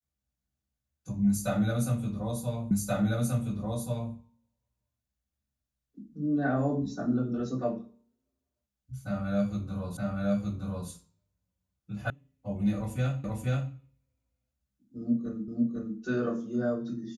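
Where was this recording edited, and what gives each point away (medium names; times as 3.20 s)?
2.71 s: repeat of the last 1.43 s
9.97 s: repeat of the last 0.92 s
12.10 s: sound stops dead
13.24 s: repeat of the last 0.48 s
15.48 s: repeat of the last 0.5 s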